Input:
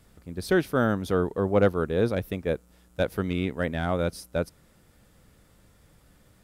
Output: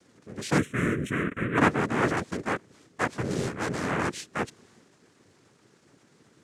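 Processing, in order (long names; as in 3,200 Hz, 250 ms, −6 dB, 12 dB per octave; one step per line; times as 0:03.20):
transient designer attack −4 dB, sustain +4 dB
cochlear-implant simulation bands 3
0:00.58–0:01.58: phaser with its sweep stopped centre 2,000 Hz, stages 4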